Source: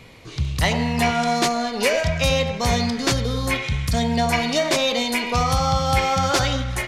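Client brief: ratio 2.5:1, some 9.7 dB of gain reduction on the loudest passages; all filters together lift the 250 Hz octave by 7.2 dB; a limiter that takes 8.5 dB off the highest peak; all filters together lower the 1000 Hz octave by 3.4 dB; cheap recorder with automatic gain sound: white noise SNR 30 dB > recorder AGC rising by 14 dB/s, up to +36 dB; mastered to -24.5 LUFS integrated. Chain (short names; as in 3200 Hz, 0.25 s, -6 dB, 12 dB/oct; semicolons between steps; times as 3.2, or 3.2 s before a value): bell 250 Hz +8.5 dB; bell 1000 Hz -6 dB; compressor 2.5:1, threshold -28 dBFS; limiter -21.5 dBFS; white noise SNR 30 dB; recorder AGC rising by 14 dB/s, up to +36 dB; gain +5.5 dB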